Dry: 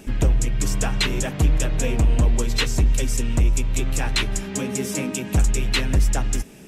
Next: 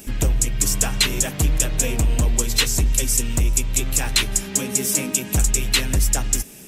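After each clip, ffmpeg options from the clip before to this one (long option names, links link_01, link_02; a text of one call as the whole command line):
ffmpeg -i in.wav -af "aemphasis=mode=production:type=75kf,volume=-1.5dB" out.wav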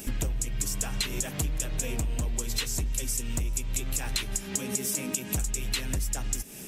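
ffmpeg -i in.wav -af "acompressor=threshold=-26dB:ratio=12" out.wav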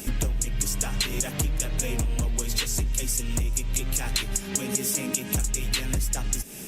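ffmpeg -i in.wav -af "volume=3.5dB" -ar 48000 -c:a libopus -b:a 64k out.opus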